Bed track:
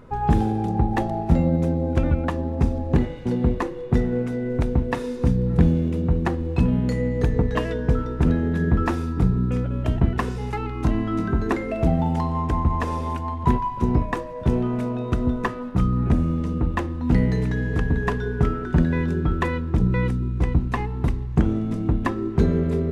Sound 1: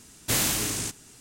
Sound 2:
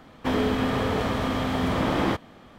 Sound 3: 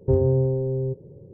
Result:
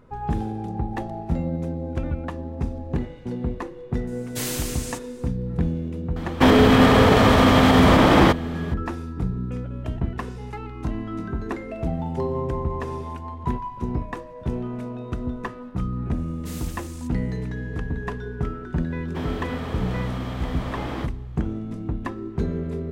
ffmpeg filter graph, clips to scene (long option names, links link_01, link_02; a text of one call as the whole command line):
ffmpeg -i bed.wav -i cue0.wav -i cue1.wav -i cue2.wav -filter_complex "[1:a]asplit=2[link_01][link_02];[2:a]asplit=2[link_03][link_04];[0:a]volume=-6.5dB[link_05];[link_01]aecho=1:1:6.6:0.83[link_06];[link_03]alimiter=level_in=17dB:limit=-1dB:release=50:level=0:latency=1[link_07];[3:a]highpass=200[link_08];[link_02]aphaser=in_gain=1:out_gain=1:delay=4.2:decay=0.4:speed=1.9:type=sinusoidal[link_09];[link_06]atrim=end=1.2,asetpts=PTS-STARTPTS,volume=-7.5dB,afade=type=in:duration=0.004:curve=hsin,afade=type=out:start_time=1.196:duration=0.004:curve=hsin,adelay=4070[link_10];[link_07]atrim=end=2.58,asetpts=PTS-STARTPTS,volume=-4.5dB,afade=type=in:duration=0.004:curve=hsin,afade=type=out:start_time=2.576:duration=0.004:curve=hsin,adelay=6160[link_11];[link_08]atrim=end=1.33,asetpts=PTS-STARTPTS,volume=-5.5dB,afade=type=in:duration=0.004:curve=hsin,afade=type=out:start_time=1.326:duration=0.004:curve=hsin,adelay=12090[link_12];[link_09]atrim=end=1.2,asetpts=PTS-STARTPTS,volume=-17.5dB,afade=type=in:duration=0.004:curve=hsin,afade=type=out:start_time=1.196:duration=0.004:curve=hsin,adelay=16170[link_13];[link_04]atrim=end=2.58,asetpts=PTS-STARTPTS,volume=-7.5dB,afade=type=in:duration=0.004:curve=hsin,afade=type=out:start_time=2.576:duration=0.004:curve=hsin,adelay=18900[link_14];[link_05][link_10][link_11][link_12][link_13][link_14]amix=inputs=6:normalize=0" out.wav